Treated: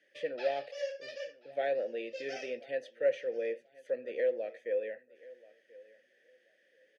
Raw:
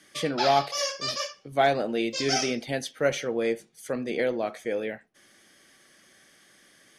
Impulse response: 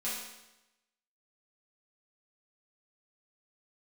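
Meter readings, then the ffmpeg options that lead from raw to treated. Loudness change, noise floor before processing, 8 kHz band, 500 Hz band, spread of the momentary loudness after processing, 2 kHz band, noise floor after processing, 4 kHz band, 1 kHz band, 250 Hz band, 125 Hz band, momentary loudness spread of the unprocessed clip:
-8.5 dB, -59 dBFS, under -25 dB, -5.0 dB, 12 LU, -11.0 dB, -70 dBFS, -19.0 dB, -17.0 dB, -18.5 dB, under -25 dB, 9 LU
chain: -filter_complex "[0:a]asplit=3[a][b][c];[a]bandpass=f=530:t=q:w=8,volume=0dB[d];[b]bandpass=f=1.84k:t=q:w=8,volume=-6dB[e];[c]bandpass=f=2.48k:t=q:w=8,volume=-9dB[f];[d][e][f]amix=inputs=3:normalize=0,aecho=1:1:1033|2066:0.0841|0.0168"

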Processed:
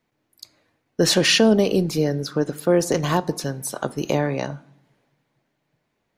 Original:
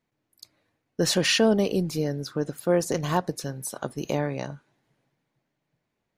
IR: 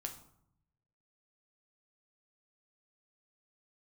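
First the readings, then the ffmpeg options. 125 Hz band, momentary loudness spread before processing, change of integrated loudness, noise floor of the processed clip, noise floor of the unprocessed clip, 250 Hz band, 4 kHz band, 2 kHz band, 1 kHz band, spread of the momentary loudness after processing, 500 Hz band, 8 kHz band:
+4.5 dB, 13 LU, +5.0 dB, -74 dBFS, -80 dBFS, +5.5 dB, +5.5 dB, +5.0 dB, +4.0 dB, 13 LU, +5.0 dB, +5.0 dB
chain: -filter_complex "[0:a]asplit=2[a][b];[b]highpass=190,lowpass=6.7k[c];[1:a]atrim=start_sample=2205[d];[c][d]afir=irnorm=-1:irlink=0,volume=-7dB[e];[a][e]amix=inputs=2:normalize=0,acrossover=split=440|3000[f][g][h];[g]acompressor=threshold=-25dB:ratio=6[i];[f][i][h]amix=inputs=3:normalize=0,volume=4.5dB"

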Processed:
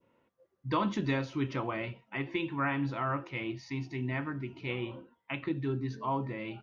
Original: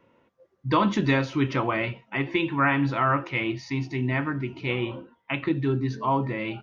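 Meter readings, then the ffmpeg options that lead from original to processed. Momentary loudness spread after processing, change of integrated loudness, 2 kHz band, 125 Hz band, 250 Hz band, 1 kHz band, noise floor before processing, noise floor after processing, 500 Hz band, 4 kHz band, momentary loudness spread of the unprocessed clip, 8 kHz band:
7 LU, -8.5 dB, -9.5 dB, -8.0 dB, -8.0 dB, -9.0 dB, -68 dBFS, -76 dBFS, -8.0 dB, -9.0 dB, 8 LU, n/a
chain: -af "adynamicequalizer=threshold=0.0158:dfrequency=1800:dqfactor=0.76:tfrequency=1800:tqfactor=0.76:attack=5:release=100:ratio=0.375:range=2:mode=cutabove:tftype=bell,volume=-8dB"

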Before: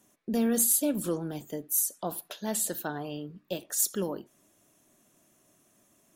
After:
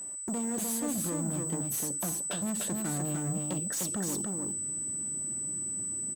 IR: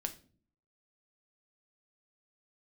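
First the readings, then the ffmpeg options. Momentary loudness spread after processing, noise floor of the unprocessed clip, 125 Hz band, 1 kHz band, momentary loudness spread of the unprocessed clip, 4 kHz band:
2 LU, -67 dBFS, +6.0 dB, -2.0 dB, 15 LU, -2.0 dB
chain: -filter_complex "[0:a]asubboost=boost=9.5:cutoff=220,asplit=2[a][b];[b]adynamicsmooth=sensitivity=6.5:basefreq=3.6k,volume=0.5dB[c];[a][c]amix=inputs=2:normalize=0,equalizer=f=730:w=0.35:g=5.5,acompressor=threshold=-28dB:ratio=6,aeval=exprs='val(0)+0.0141*sin(2*PI*8000*n/s)':c=same,asoftclip=type=hard:threshold=-31dB,highpass=62,asplit=2[d][e];[e]aecho=0:1:300:0.708[f];[d][f]amix=inputs=2:normalize=0"

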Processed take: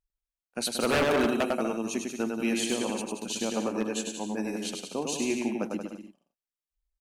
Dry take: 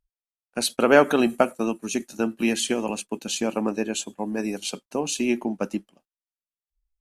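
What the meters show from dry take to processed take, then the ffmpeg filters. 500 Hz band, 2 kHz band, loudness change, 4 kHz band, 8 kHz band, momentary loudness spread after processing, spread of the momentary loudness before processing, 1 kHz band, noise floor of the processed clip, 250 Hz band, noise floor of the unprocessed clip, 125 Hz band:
-6.0 dB, -5.0 dB, -5.0 dB, -3.5 dB, -4.0 dB, 9 LU, 12 LU, -5.5 dB, under -85 dBFS, -4.5 dB, under -85 dBFS, -3.0 dB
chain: -af "aecho=1:1:100|180|244|295.2|336.2:0.631|0.398|0.251|0.158|0.1,aeval=exprs='0.251*(abs(mod(val(0)/0.251+3,4)-2)-1)':c=same,volume=-6dB"

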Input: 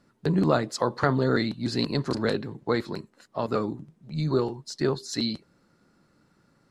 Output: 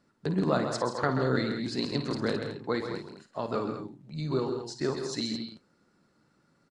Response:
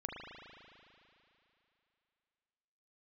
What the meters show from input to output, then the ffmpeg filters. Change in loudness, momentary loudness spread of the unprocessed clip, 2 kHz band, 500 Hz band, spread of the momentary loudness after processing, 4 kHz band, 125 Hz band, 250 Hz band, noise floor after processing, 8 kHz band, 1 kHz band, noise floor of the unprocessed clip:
-4.0 dB, 12 LU, -3.0 dB, -3.5 dB, 10 LU, -3.0 dB, -5.0 dB, -4.0 dB, -69 dBFS, -3.0 dB, -3.0 dB, -66 dBFS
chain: -af "lowshelf=f=86:g=-6,aecho=1:1:54|132|167|215:0.299|0.376|0.237|0.266,aresample=22050,aresample=44100,volume=-4.5dB"

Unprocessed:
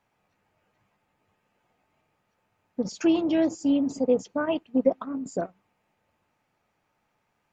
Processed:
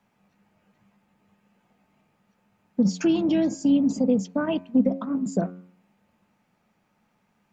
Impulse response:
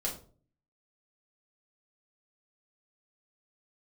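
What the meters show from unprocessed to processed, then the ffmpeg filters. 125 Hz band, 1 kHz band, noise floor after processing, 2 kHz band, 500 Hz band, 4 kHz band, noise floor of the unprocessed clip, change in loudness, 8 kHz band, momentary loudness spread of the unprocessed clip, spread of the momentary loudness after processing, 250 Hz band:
+11.5 dB, -1.0 dB, -70 dBFS, -0.5 dB, -2.0 dB, +1.5 dB, -75 dBFS, +2.0 dB, n/a, 10 LU, 7 LU, +3.5 dB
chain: -filter_complex "[0:a]equalizer=f=200:t=o:w=0.5:g=14,acrossover=split=250|3000[a][b][c];[b]acompressor=threshold=-26dB:ratio=6[d];[a][d][c]amix=inputs=3:normalize=0,bandreject=f=90.31:t=h:w=4,bandreject=f=180.62:t=h:w=4,bandreject=f=270.93:t=h:w=4,bandreject=f=361.24:t=h:w=4,bandreject=f=451.55:t=h:w=4,bandreject=f=541.86:t=h:w=4,bandreject=f=632.17:t=h:w=4,bandreject=f=722.48:t=h:w=4,bandreject=f=812.79:t=h:w=4,bandreject=f=903.1:t=h:w=4,bandreject=f=993.41:t=h:w=4,bandreject=f=1.08372k:t=h:w=4,bandreject=f=1.17403k:t=h:w=4,bandreject=f=1.26434k:t=h:w=4,bandreject=f=1.35465k:t=h:w=4,bandreject=f=1.44496k:t=h:w=4,bandreject=f=1.53527k:t=h:w=4,bandreject=f=1.62558k:t=h:w=4,bandreject=f=1.71589k:t=h:w=4,bandreject=f=1.8062k:t=h:w=4,bandreject=f=1.89651k:t=h:w=4,bandreject=f=1.98682k:t=h:w=4,bandreject=f=2.07713k:t=h:w=4,bandreject=f=2.16744k:t=h:w=4,bandreject=f=2.25775k:t=h:w=4,bandreject=f=2.34806k:t=h:w=4,bandreject=f=2.43837k:t=h:w=4,bandreject=f=2.52868k:t=h:w=4,volume=3dB"

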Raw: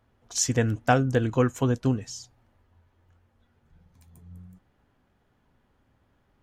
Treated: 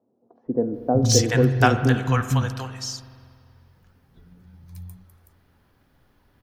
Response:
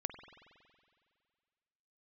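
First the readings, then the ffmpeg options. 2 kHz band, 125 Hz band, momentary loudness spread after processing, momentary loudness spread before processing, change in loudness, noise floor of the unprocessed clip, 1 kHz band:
+6.5 dB, +6.0 dB, 14 LU, 10 LU, +3.5 dB, -69 dBFS, +4.5 dB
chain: -filter_complex "[0:a]acrossover=split=200|640[a][b][c];[a]adelay=460[d];[c]adelay=740[e];[d][b][e]amix=inputs=3:normalize=0,asplit=2[f][g];[1:a]atrim=start_sample=2205[h];[g][h]afir=irnorm=-1:irlink=0,volume=6dB[i];[f][i]amix=inputs=2:normalize=0,acrossover=split=8300[j][k];[k]acompressor=threshold=-42dB:ratio=4:attack=1:release=60[l];[j][l]amix=inputs=2:normalize=0,aexciter=amount=1.3:drive=6:freq=4.1k,volume=-2.5dB"

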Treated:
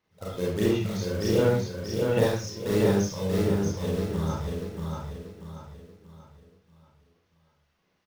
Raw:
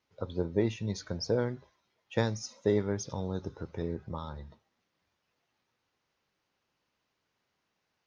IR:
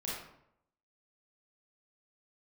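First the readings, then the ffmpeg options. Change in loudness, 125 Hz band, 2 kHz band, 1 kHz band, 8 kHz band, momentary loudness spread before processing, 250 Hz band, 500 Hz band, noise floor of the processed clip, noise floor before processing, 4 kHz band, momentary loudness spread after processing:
+6.5 dB, +7.5 dB, +7.0 dB, +6.5 dB, n/a, 11 LU, +8.0 dB, +7.5 dB, -72 dBFS, -81 dBFS, +6.5 dB, 16 LU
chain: -filter_complex "[0:a]acrusher=bits=3:mode=log:mix=0:aa=0.000001,aphaser=in_gain=1:out_gain=1:delay=2:decay=0.57:speed=1.4:type=sinusoidal,aecho=1:1:635|1270|1905|2540|3175:0.668|0.261|0.102|0.0396|0.0155[a];[1:a]atrim=start_sample=2205,afade=t=out:st=0.21:d=0.01,atrim=end_sample=9702[b];[a][b]afir=irnorm=-1:irlink=0"

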